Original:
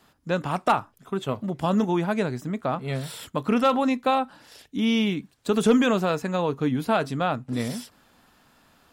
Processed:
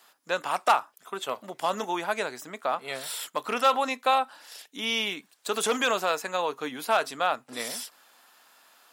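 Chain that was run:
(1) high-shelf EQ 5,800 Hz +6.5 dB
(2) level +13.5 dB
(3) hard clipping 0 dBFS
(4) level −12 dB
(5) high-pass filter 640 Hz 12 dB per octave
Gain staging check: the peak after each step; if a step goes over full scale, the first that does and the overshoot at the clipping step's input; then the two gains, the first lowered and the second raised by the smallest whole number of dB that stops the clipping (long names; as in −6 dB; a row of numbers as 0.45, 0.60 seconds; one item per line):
−9.0, +4.5, 0.0, −12.0, −8.5 dBFS
step 2, 4.5 dB
step 2 +8.5 dB, step 4 −7 dB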